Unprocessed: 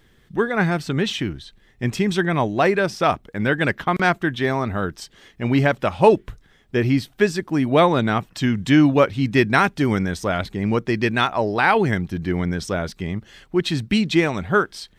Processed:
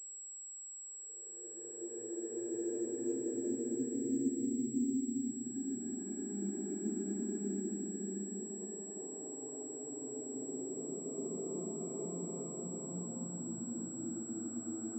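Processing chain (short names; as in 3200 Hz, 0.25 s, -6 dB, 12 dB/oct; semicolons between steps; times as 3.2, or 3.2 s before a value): auto-wah 210–1300 Hz, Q 14, down, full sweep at -12.5 dBFS; Paulstretch 8.9×, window 0.50 s, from 6.44; pulse-width modulation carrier 7700 Hz; gain -7 dB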